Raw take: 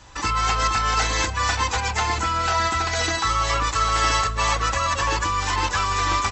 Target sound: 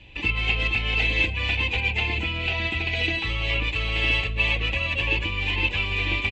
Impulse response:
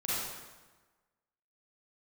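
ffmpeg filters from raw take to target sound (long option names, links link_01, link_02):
-af "firequalizer=gain_entry='entry(350,0);entry(1300,-22);entry(2500,11);entry(5500,-24)':delay=0.05:min_phase=1"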